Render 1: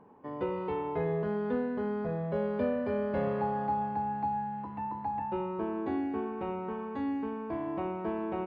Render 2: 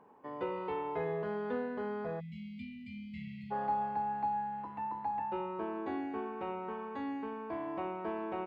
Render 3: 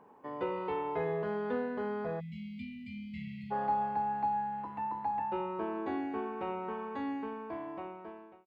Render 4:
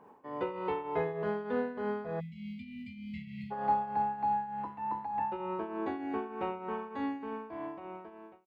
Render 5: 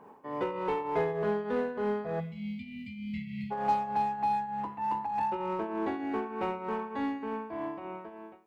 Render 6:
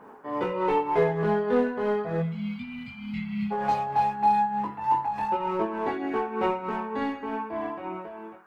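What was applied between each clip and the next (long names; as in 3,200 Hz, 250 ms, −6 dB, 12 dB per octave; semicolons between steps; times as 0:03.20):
time-frequency box erased 0:02.20–0:03.51, 240–1,900 Hz; low-shelf EQ 310 Hz −11.5 dB
fade-out on the ending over 1.35 s; level +2 dB
shaped tremolo triangle 3.3 Hz, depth 70%; level +3.5 dB
in parallel at −5 dB: hard clipping −34 dBFS, distortion −8 dB; on the sum: coupled-rooms reverb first 0.75 s, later 3.3 s, from −28 dB, DRR 14 dB
multi-voice chorus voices 4, 0.31 Hz, delay 20 ms, depth 4 ms; noise in a band 710–1,600 Hz −67 dBFS; level +8.5 dB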